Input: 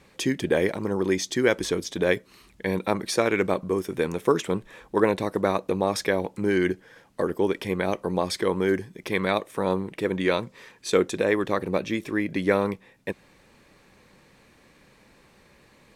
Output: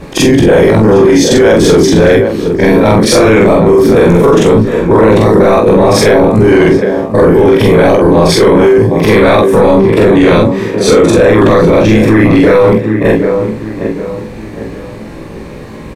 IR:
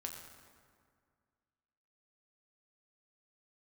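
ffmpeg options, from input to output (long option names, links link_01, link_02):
-filter_complex "[0:a]afftfilt=real='re':imag='-im':win_size=4096:overlap=0.75,tiltshelf=frequency=920:gain=7,acompressor=threshold=-25dB:ratio=3,asplit=2[link_01][link_02];[link_02]adelay=18,volume=-6.5dB[link_03];[link_01][link_03]amix=inputs=2:normalize=0,asplit=2[link_04][link_05];[link_05]adelay=760,lowpass=frequency=2900:poles=1,volume=-13.5dB,asplit=2[link_06][link_07];[link_07]adelay=760,lowpass=frequency=2900:poles=1,volume=0.39,asplit=2[link_08][link_09];[link_09]adelay=760,lowpass=frequency=2900:poles=1,volume=0.39,asplit=2[link_10][link_11];[link_11]adelay=760,lowpass=frequency=2900:poles=1,volume=0.39[link_12];[link_06][link_08][link_10][link_12]amix=inputs=4:normalize=0[link_13];[link_04][link_13]amix=inputs=2:normalize=0,apsyclip=31dB,volume=-1.5dB"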